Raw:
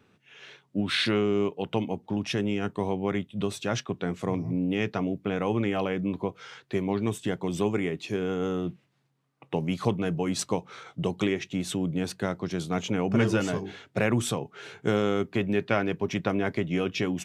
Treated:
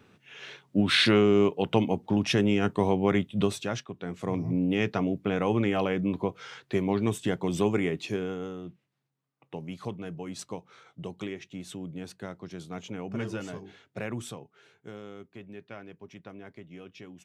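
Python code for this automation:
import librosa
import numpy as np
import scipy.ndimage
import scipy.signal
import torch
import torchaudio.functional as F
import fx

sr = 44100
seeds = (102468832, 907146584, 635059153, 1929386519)

y = fx.gain(x, sr, db=fx.line((3.43, 4.0), (3.92, -8.5), (4.45, 1.0), (8.05, 1.0), (8.56, -10.0), (14.22, -10.0), (14.82, -18.5)))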